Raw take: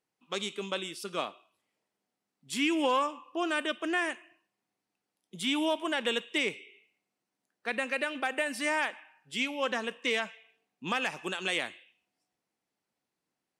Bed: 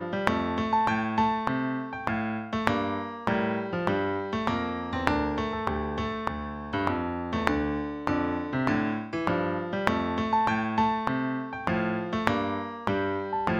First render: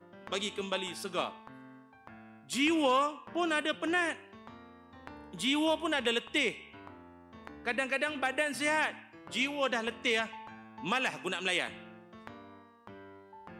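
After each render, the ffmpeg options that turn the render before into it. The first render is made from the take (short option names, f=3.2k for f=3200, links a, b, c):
-filter_complex "[1:a]volume=-23dB[a];[0:a][a]amix=inputs=2:normalize=0"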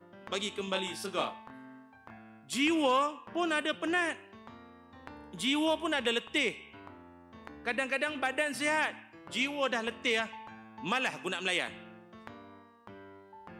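-filter_complex "[0:a]asettb=1/sr,asplit=3[a][b][c];[a]atrim=end=0.654[d];[b]atrim=start=0.65:end=2.18,asetpts=PTS-STARTPTS,afade=t=in:d=0.004:c=qsin,afade=t=out:st=1.526:d=0.004:c=qsin,asplit=2[e][f];[f]adelay=26,volume=-5.5dB[g];[e][g]amix=inputs=2:normalize=0,atrim=end_sample=67473[h];[c]atrim=start=2.176[i];[d][h]acrossfade=d=0.004:c1=hsin:c2=qsin[j];[j][i]acrossfade=d=0.004:c1=qsin:c2=hsin"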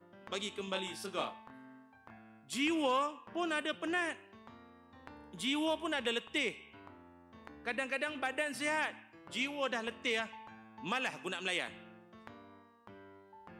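-af "volume=-4.5dB"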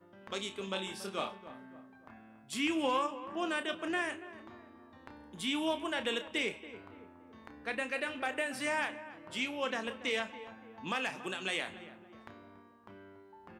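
-filter_complex "[0:a]asplit=2[a][b];[b]adelay=31,volume=-10dB[c];[a][c]amix=inputs=2:normalize=0,asplit=2[d][e];[e]adelay=283,lowpass=f=1.3k:p=1,volume=-13dB,asplit=2[f][g];[g]adelay=283,lowpass=f=1.3k:p=1,volume=0.49,asplit=2[h][i];[i]adelay=283,lowpass=f=1.3k:p=1,volume=0.49,asplit=2[j][k];[k]adelay=283,lowpass=f=1.3k:p=1,volume=0.49,asplit=2[l][m];[m]adelay=283,lowpass=f=1.3k:p=1,volume=0.49[n];[d][f][h][j][l][n]amix=inputs=6:normalize=0"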